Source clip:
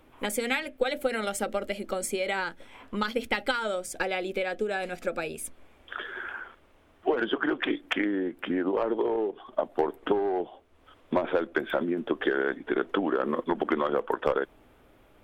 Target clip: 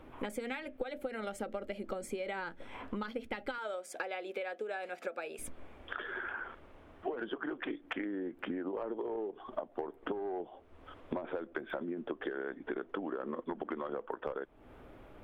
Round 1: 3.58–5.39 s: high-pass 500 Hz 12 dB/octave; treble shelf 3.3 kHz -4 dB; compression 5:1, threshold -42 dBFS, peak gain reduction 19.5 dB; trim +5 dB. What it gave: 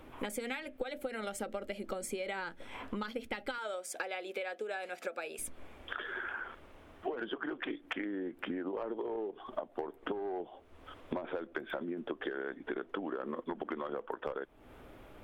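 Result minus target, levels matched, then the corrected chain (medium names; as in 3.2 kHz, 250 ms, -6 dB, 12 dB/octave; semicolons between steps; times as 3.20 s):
8 kHz band +6.0 dB
3.58–5.39 s: high-pass 500 Hz 12 dB/octave; treble shelf 3.3 kHz -13 dB; compression 5:1, threshold -42 dBFS, peak gain reduction 19 dB; trim +5 dB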